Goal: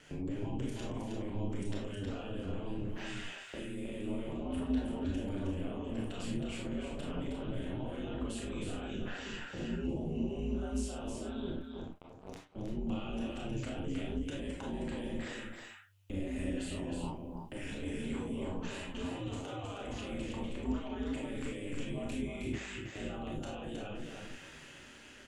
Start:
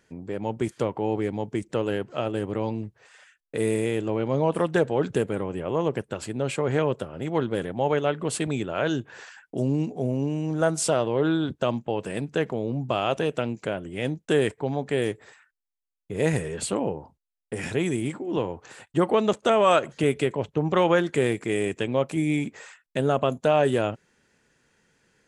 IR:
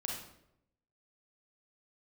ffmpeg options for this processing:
-filter_complex "[0:a]equalizer=frequency=2900:width=3.5:gain=11,dynaudnorm=framelen=590:gausssize=5:maxgain=11.5dB,alimiter=level_in=11dB:limit=-24dB:level=0:latency=1:release=18,volume=-11dB,acrossover=split=220[link_01][link_02];[link_02]acompressor=threshold=-50dB:ratio=10[link_03];[link_01][link_03]amix=inputs=2:normalize=0,aeval=exprs='val(0)*sin(2*PI*98*n/s)':channel_layout=same,asettb=1/sr,asplit=3[link_04][link_05][link_06];[link_04]atrim=end=11.524[link_07];[link_05]atrim=start=11.52:end=12.56,asetpts=PTS-STARTPTS,afade=type=in:duration=0.004:curve=qsin,afade=type=out:start_time=1.036:duration=0.004:curve=qsin,acrusher=bits=5:mix=0:aa=0.5[link_08];[link_06]atrim=start=12.556[link_09];[link_07][link_08]acrossfade=duration=0.004:curve1=hsin:curve2=qsin[link_10];[link_10][link_09]acrossfade=duration=0.004:curve1=qsin:curve2=hsin,flanger=delay=6.7:depth=7:regen=56:speed=0.14:shape=triangular,aecho=1:1:316:0.562[link_11];[1:a]atrim=start_sample=2205,atrim=end_sample=6174,asetrate=57330,aresample=44100[link_12];[link_11][link_12]afir=irnorm=-1:irlink=0,volume=16dB"

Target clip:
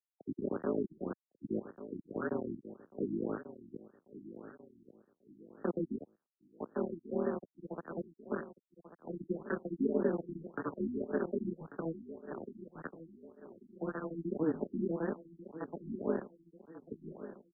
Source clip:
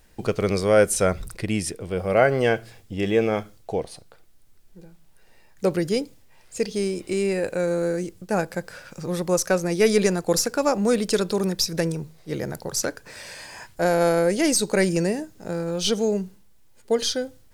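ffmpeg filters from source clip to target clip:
ffmpeg -i in.wav -filter_complex "[0:a]afftfilt=real='re*(1-between(b*sr/4096,450,1100))':imag='im*(1-between(b*sr/4096,450,1100))':win_size=4096:overlap=0.75,flanger=delay=8.4:depth=9.6:regen=-48:speed=0.92:shape=sinusoidal,asplit=2[link_01][link_02];[link_02]asoftclip=type=tanh:threshold=-23.5dB,volume=-12dB[link_03];[link_01][link_03]amix=inputs=2:normalize=0,equalizer=frequency=73:width_type=o:width=1.3:gain=-4,acompressor=mode=upward:threshold=-41dB:ratio=2.5,tremolo=f=160:d=0.974,aeval=exprs='val(0)*gte(abs(val(0)),0.0447)':channel_layout=same,acrossover=split=160 2800:gain=0.0631 1 0.251[link_04][link_05][link_06];[link_04][link_05][link_06]amix=inputs=3:normalize=0,acrossover=split=180|590|1200[link_07][link_08][link_09][link_10];[link_07]acompressor=threshold=-47dB:ratio=4[link_11];[link_09]acompressor=threshold=-54dB:ratio=4[link_12];[link_10]acompressor=threshold=-41dB:ratio=4[link_13];[link_11][link_08][link_12][link_13]amix=inputs=4:normalize=0,asplit=2[link_14][link_15];[link_15]aecho=0:1:1141|2282|3423|4564:0.211|0.0909|0.0391|0.0168[link_16];[link_14][link_16]amix=inputs=2:normalize=0,afftfilt=real='re*lt(b*sr/1024,340*pow(1900/340,0.5+0.5*sin(2*PI*1.8*pts/sr)))':imag='im*lt(b*sr/1024,340*pow(1900/340,0.5+0.5*sin(2*PI*1.8*pts/sr)))':win_size=1024:overlap=0.75,volume=1dB" out.wav

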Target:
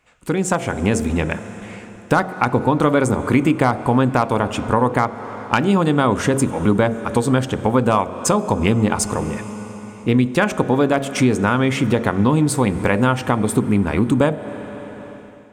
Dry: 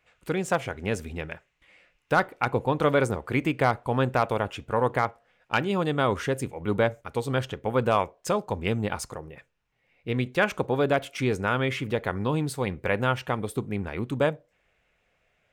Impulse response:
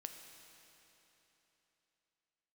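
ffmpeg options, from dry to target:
-filter_complex "[0:a]bandreject=frequency=45.49:width_type=h:width=4,bandreject=frequency=90.98:width_type=h:width=4,bandreject=frequency=136.47:width_type=h:width=4,bandreject=frequency=181.96:width_type=h:width=4,bandreject=frequency=227.45:width_type=h:width=4,bandreject=frequency=272.94:width_type=h:width=4,bandreject=frequency=318.43:width_type=h:width=4,bandreject=frequency=363.92:width_type=h:width=4,bandreject=frequency=409.41:width_type=h:width=4,bandreject=frequency=454.9:width_type=h:width=4,bandreject=frequency=500.39:width_type=h:width=4,bandreject=frequency=545.88:width_type=h:width=4,bandreject=frequency=591.37:width_type=h:width=4,bandreject=frequency=636.86:width_type=h:width=4,bandreject=frequency=682.35:width_type=h:width=4,bandreject=frequency=727.84:width_type=h:width=4,bandreject=frequency=773.33:width_type=h:width=4,asplit=2[link_01][link_02];[1:a]atrim=start_sample=2205,asetrate=28665,aresample=44100[link_03];[link_02][link_03]afir=irnorm=-1:irlink=0,volume=-8dB[link_04];[link_01][link_04]amix=inputs=2:normalize=0,dynaudnorm=framelen=420:gausssize=3:maxgain=11.5dB,equalizer=frequency=250:width_type=o:width=1:gain=9,equalizer=frequency=1000:width_type=o:width=1:gain=6,equalizer=frequency=8000:width_type=o:width=1:gain=10,acompressor=threshold=-18dB:ratio=2.5,lowshelf=frequency=190:gain=5.5,volume=1dB"

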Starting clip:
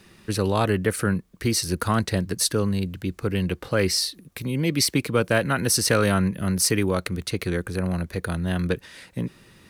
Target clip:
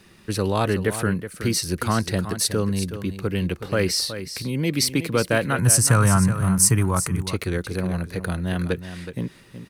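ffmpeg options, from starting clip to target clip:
ffmpeg -i in.wav -filter_complex "[0:a]asettb=1/sr,asplit=3[link_01][link_02][link_03];[link_01]atrim=end=5.584[link_04];[link_02]atrim=start=5.58:end=7.24,asetpts=PTS-STARTPTS,afade=type=in:duration=0.004:curve=qsin,afade=type=out:start_time=1.656:duration=0.004:curve=qsin,equalizer=frequency=125:width_type=o:width=1:gain=12,equalizer=frequency=250:width_type=o:width=1:gain=-3,equalizer=frequency=500:width_type=o:width=1:gain=-8,equalizer=frequency=1000:width_type=o:width=1:gain=9,equalizer=frequency=2000:width_type=o:width=1:gain=-3,equalizer=frequency=4000:width_type=o:width=1:gain=-11,equalizer=frequency=8000:width_type=o:width=1:gain=10[link_05];[link_03]atrim=start=7.236[link_06];[link_04][link_05]acrossfade=duration=0.004:curve1=hsin:curve2=qsin[link_07];[link_07][link_06]acrossfade=duration=0.004:curve1=qsin:curve2=hsin,aecho=1:1:371:0.282" out.wav

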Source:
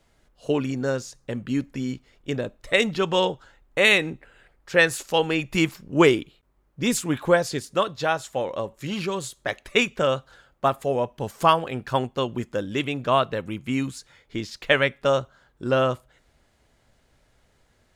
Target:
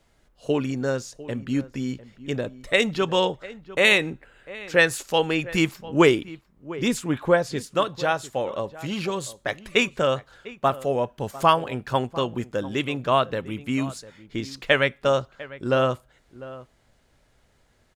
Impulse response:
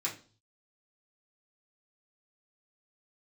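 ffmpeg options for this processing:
-filter_complex "[0:a]asettb=1/sr,asplit=3[link_01][link_02][link_03];[link_01]atrim=end=6.884[link_04];[link_02]atrim=start=6.88:end=7.57,asetpts=PTS-STARTPTS,afade=type=in:duration=0.004:curve=qsin,afade=type=out:start_time=0.686:duration=0.004:curve=qsin,highshelf=frequency=3900:gain=-8[link_05];[link_03]atrim=start=7.566[link_06];[link_04][link_05]acrossfade=duration=0.004:curve1=hsin:curve2=qsin[link_07];[link_07][link_06]acrossfade=duration=0.004:curve1=qsin:curve2=hsin,asplit=2[link_08][link_09];[link_09]adelay=699.7,volume=-17dB,highshelf=frequency=4000:gain=-15.7[link_10];[link_08][link_10]amix=inputs=2:normalize=0"

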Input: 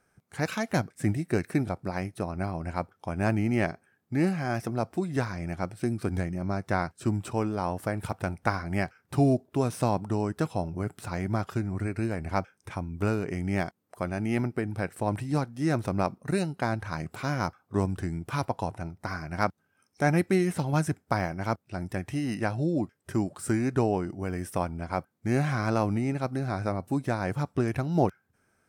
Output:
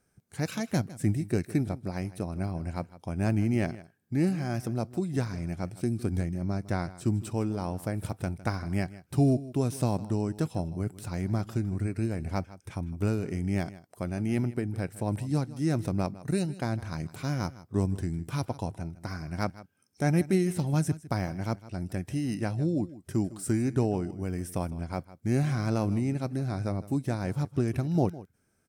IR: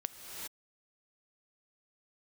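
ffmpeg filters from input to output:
-af "equalizer=frequency=1200:width=0.46:gain=-9.5,aecho=1:1:157:0.133,volume=1.5dB"

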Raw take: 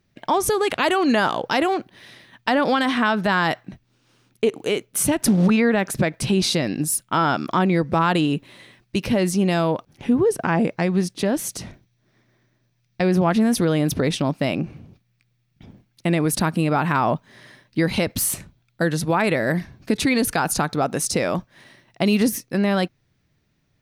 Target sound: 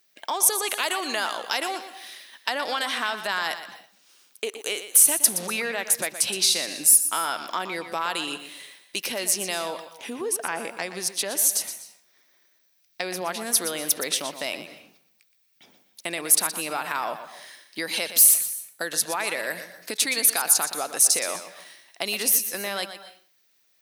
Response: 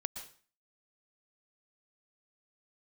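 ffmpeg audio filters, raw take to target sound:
-filter_complex "[0:a]highpass=500,acompressor=threshold=-31dB:ratio=1.5,crystalizer=i=4.5:c=0,asplit=2[link_01][link_02];[1:a]atrim=start_sample=2205,asetrate=41895,aresample=44100,adelay=120[link_03];[link_02][link_03]afir=irnorm=-1:irlink=0,volume=-10dB[link_04];[link_01][link_04]amix=inputs=2:normalize=0,volume=-4dB"

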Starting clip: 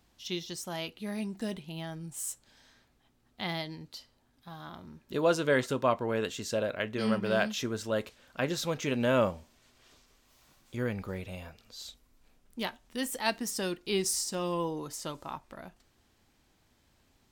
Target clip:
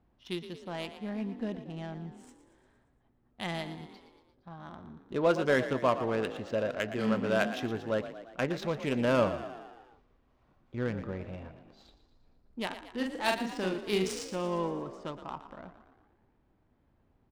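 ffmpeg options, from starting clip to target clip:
ffmpeg -i in.wav -filter_complex "[0:a]asettb=1/sr,asplit=3[link_01][link_02][link_03];[link_01]atrim=end=12.664[link_04];[link_02]atrim=start=12.66:end=14.36,asetpts=PTS-STARTPTS,afade=type=in:duration=0.004:curve=qsin,afade=type=out:start_time=1.696:duration=0.004:curve=qsin,asplit=2[link_05][link_06];[link_06]adelay=43,volume=-3.5dB[link_07];[link_05][link_07]amix=inputs=2:normalize=0,atrim=end_sample=74970[link_08];[link_03]atrim=start=14.356[link_09];[link_04][link_08]acrossfade=duration=0.004:curve1=hsin:curve2=qsin[link_10];[link_10][link_09]acrossfade=duration=0.004:curve1=qsin:curve2=hsin,adynamicsmooth=sensitivity=4.5:basefreq=1300,asplit=7[link_11][link_12][link_13][link_14][link_15][link_16][link_17];[link_12]adelay=116,afreqshift=41,volume=-12dB[link_18];[link_13]adelay=232,afreqshift=82,volume=-16.9dB[link_19];[link_14]adelay=348,afreqshift=123,volume=-21.8dB[link_20];[link_15]adelay=464,afreqshift=164,volume=-26.6dB[link_21];[link_16]adelay=580,afreqshift=205,volume=-31.5dB[link_22];[link_17]adelay=696,afreqshift=246,volume=-36.4dB[link_23];[link_11][link_18][link_19][link_20][link_21][link_22][link_23]amix=inputs=7:normalize=0" out.wav

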